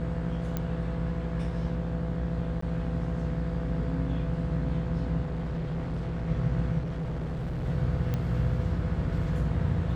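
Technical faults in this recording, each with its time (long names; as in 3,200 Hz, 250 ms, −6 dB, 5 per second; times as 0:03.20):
mains buzz 60 Hz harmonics 28 −33 dBFS
0:00.57: click −17 dBFS
0:02.61–0:02.62: drop-out 14 ms
0:05.23–0:06.27: clipping −28.5 dBFS
0:06.78–0:07.65: clipping −29.5 dBFS
0:08.14: click −18 dBFS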